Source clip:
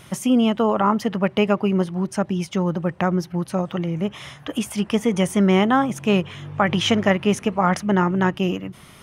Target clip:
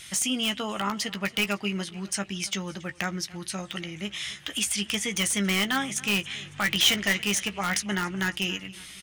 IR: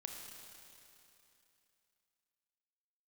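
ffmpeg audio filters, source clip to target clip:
-filter_complex "[0:a]equalizer=frequency=125:width_type=o:width=1:gain=-10,equalizer=frequency=250:width_type=o:width=1:gain=-6,equalizer=frequency=500:width_type=o:width=1:gain=-10,equalizer=frequency=1000:width_type=o:width=1:gain=-9,equalizer=frequency=2000:width_type=o:width=1:gain=6,equalizer=frequency=4000:width_type=o:width=1:gain=8,equalizer=frequency=8000:width_type=o:width=1:gain=11,aecho=1:1:277|554|831:0.0841|0.0412|0.0202,asplit=2[link_01][link_02];[link_02]aeval=exprs='(mod(5.01*val(0)+1,2)-1)/5.01':channel_layout=same,volume=-5dB[link_03];[link_01][link_03]amix=inputs=2:normalize=0,asplit=2[link_04][link_05];[link_05]adelay=15,volume=-9.5dB[link_06];[link_04][link_06]amix=inputs=2:normalize=0,volume=-7dB"

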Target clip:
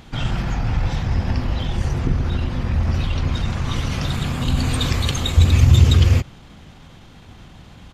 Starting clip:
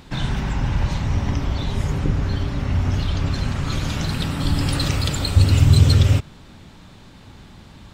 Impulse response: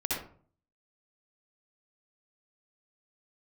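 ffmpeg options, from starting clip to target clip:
-af "asetrate=39289,aresample=44100,atempo=1.12246,volume=1dB"

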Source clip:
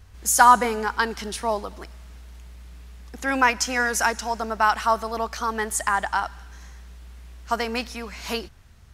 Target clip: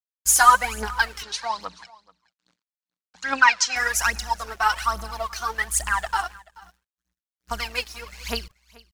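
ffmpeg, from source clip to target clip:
ffmpeg -i in.wav -filter_complex "[0:a]agate=range=-33dB:threshold=-34dB:ratio=3:detection=peak,equalizer=frequency=300:width_type=o:width=2.7:gain=-12.5,aphaser=in_gain=1:out_gain=1:delay=2.9:decay=0.75:speed=1.2:type=triangular,acrusher=bits=9:mix=0:aa=0.000001,aeval=exprs='sgn(val(0))*max(abs(val(0))-0.0075,0)':channel_layout=same,asettb=1/sr,asplit=3[link_01][link_02][link_03];[link_01]atrim=end=1.234[link_04];[link_02]atrim=start=1.23:end=3.76,asetpts=PTS-STARTPTS,afade=type=in:duration=0.004:curve=qsin,afade=type=out:start_time=2.526:duration=0.004:curve=qsin,highpass=210,equalizer=frequency=380:width_type=q:width=4:gain=-9,equalizer=frequency=670:width_type=q:width=4:gain=-3,equalizer=frequency=1000:width_type=q:width=4:gain=4,equalizer=frequency=1500:width_type=q:width=4:gain=4,equalizer=frequency=4200:width_type=q:width=4:gain=7,lowpass=frequency=7200:width=0.5412,lowpass=frequency=7200:width=1.3066[link_05];[link_03]atrim=start=3.756[link_06];[link_04][link_05]acrossfade=duration=0.004:curve1=hsin:curve2=qsin[link_07];[link_07][link_06]acrossfade=duration=0.004:curve1=qsin:curve2=hsin,aecho=1:1:432:0.075" out.wav

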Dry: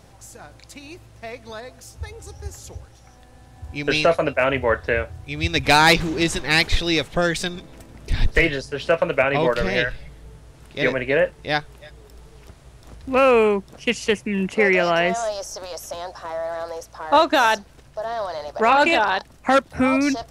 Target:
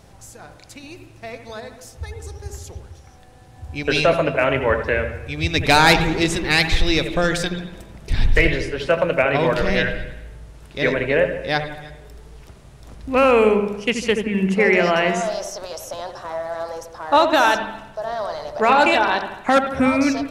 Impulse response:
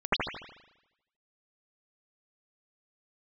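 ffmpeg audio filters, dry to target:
-filter_complex "[0:a]asplit=2[link_01][link_02];[1:a]atrim=start_sample=2205,lowshelf=frequency=300:gain=9[link_03];[link_02][link_03]afir=irnorm=-1:irlink=0,volume=-23dB[link_04];[link_01][link_04]amix=inputs=2:normalize=0"

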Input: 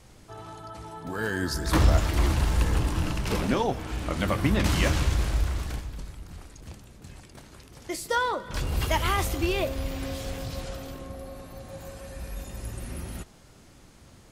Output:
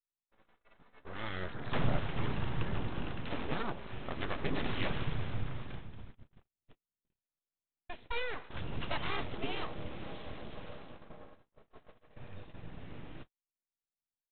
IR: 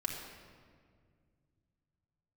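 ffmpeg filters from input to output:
-af "agate=range=-47dB:threshold=-38dB:ratio=16:detection=peak,aresample=8000,aeval=exprs='abs(val(0))':channel_layout=same,aresample=44100,volume=-8dB"

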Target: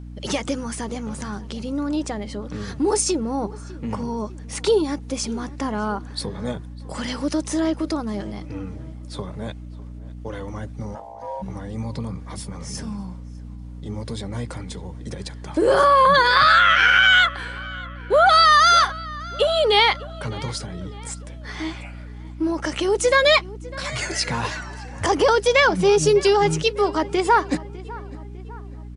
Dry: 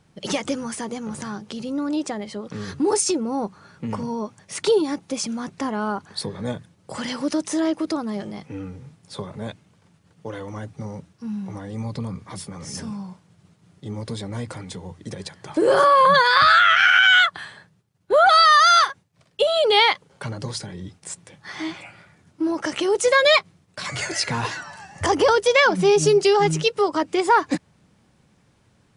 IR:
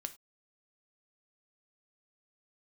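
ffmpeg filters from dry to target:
-filter_complex "[0:a]aeval=exprs='val(0)+0.0178*(sin(2*PI*60*n/s)+sin(2*PI*2*60*n/s)/2+sin(2*PI*3*60*n/s)/3+sin(2*PI*4*60*n/s)/4+sin(2*PI*5*60*n/s)/5)':channel_layout=same,asplit=3[link_01][link_02][link_03];[link_01]afade=type=out:start_time=10.94:duration=0.02[link_04];[link_02]aeval=exprs='val(0)*sin(2*PI*740*n/s)':channel_layout=same,afade=type=in:start_time=10.94:duration=0.02,afade=type=out:start_time=11.41:duration=0.02[link_05];[link_03]afade=type=in:start_time=11.41:duration=0.02[link_06];[link_04][link_05][link_06]amix=inputs=3:normalize=0,asplit=2[link_07][link_08];[link_08]adelay=602,lowpass=frequency=3400:poles=1,volume=-19.5dB,asplit=2[link_09][link_10];[link_10]adelay=602,lowpass=frequency=3400:poles=1,volume=0.51,asplit=2[link_11][link_12];[link_12]adelay=602,lowpass=frequency=3400:poles=1,volume=0.51,asplit=2[link_13][link_14];[link_14]adelay=602,lowpass=frequency=3400:poles=1,volume=0.51[link_15];[link_09][link_11][link_13][link_15]amix=inputs=4:normalize=0[link_16];[link_07][link_16]amix=inputs=2:normalize=0"

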